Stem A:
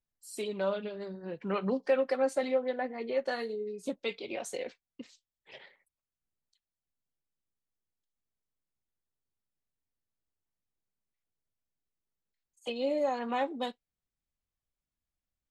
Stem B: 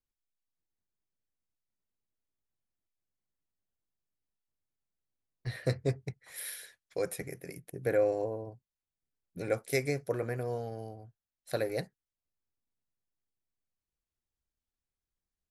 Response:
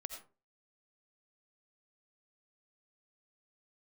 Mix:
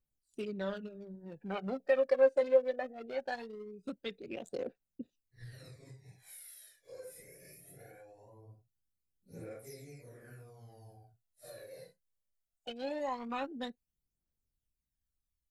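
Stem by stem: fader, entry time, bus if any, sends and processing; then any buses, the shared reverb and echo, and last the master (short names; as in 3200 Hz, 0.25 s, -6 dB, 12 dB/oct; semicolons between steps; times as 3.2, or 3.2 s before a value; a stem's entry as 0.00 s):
-4.0 dB, 0.00 s, no send, Wiener smoothing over 41 samples
-11.5 dB, 0.00 s, no send, phase scrambler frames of 0.2 s; high shelf 5300 Hz +11 dB; compressor 20:1, threshold -39 dBFS, peak gain reduction 16.5 dB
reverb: off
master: phaser 0.21 Hz, delay 2 ms, feedback 63%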